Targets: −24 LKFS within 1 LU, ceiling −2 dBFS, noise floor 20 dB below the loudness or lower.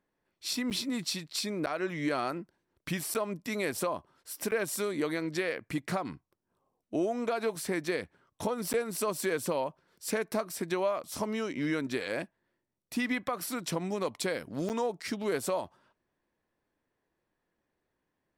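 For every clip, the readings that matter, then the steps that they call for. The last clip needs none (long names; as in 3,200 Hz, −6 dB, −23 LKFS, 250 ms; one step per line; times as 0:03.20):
number of dropouts 6; longest dropout 9.0 ms; integrated loudness −33.0 LKFS; sample peak −19.5 dBFS; target loudness −24.0 LKFS
→ repair the gap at 0:00.70/0:01.66/0:03.14/0:04.51/0:08.73/0:14.69, 9 ms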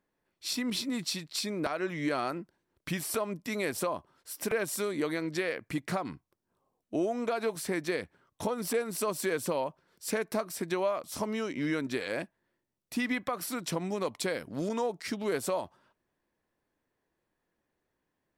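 number of dropouts 0; integrated loudness −33.0 LKFS; sample peak −19.0 dBFS; target loudness −24.0 LKFS
→ level +9 dB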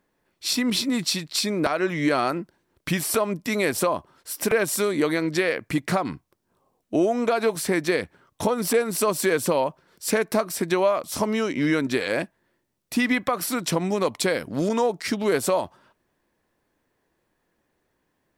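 integrated loudness −24.0 LKFS; sample peak −10.0 dBFS; background noise floor −74 dBFS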